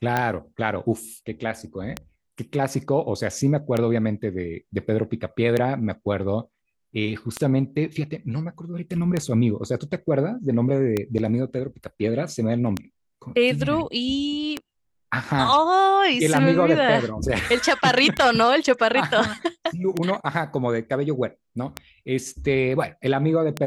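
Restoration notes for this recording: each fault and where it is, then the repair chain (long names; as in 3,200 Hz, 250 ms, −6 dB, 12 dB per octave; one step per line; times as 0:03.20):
scratch tick 33 1/3 rpm −9 dBFS
0:11.18–0:11.19: drop-out 7.1 ms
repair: click removal
repair the gap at 0:11.18, 7.1 ms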